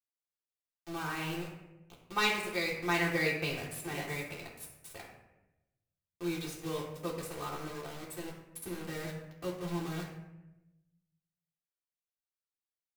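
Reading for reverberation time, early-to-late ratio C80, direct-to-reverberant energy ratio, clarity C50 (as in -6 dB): 0.95 s, 7.0 dB, -5.0 dB, 4.0 dB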